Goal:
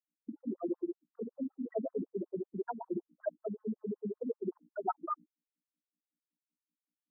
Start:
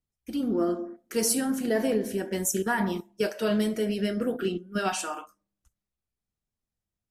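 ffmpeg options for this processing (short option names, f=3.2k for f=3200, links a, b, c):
-filter_complex "[0:a]highshelf=f=5.4k:g=-9.5,acrossover=split=2600[a][b];[a]adynamicsmooth=sensitivity=2:basefreq=1.5k[c];[c][b]amix=inputs=2:normalize=0,afftfilt=real='re*gte(hypot(re,im),0.112)':imag='im*gte(hypot(re,im),0.112)':win_size=1024:overlap=0.75,areverse,acompressor=threshold=-38dB:ratio=16,areverse,aeval=exprs='val(0)+0.00112*(sin(2*PI*60*n/s)+sin(2*PI*2*60*n/s)/2+sin(2*PI*3*60*n/s)/3+sin(2*PI*4*60*n/s)/4+sin(2*PI*5*60*n/s)/5)':c=same,aemphasis=mode=production:type=bsi,agate=range=-33dB:threshold=-60dB:ratio=16:detection=peak,afftfilt=real='re*between(b*sr/1024,220*pow(1500/220,0.5+0.5*sin(2*PI*5.3*pts/sr))/1.41,220*pow(1500/220,0.5+0.5*sin(2*PI*5.3*pts/sr))*1.41)':imag='im*between(b*sr/1024,220*pow(1500/220,0.5+0.5*sin(2*PI*5.3*pts/sr))/1.41,220*pow(1500/220,0.5+0.5*sin(2*PI*5.3*pts/sr))*1.41)':win_size=1024:overlap=0.75,volume=12.5dB"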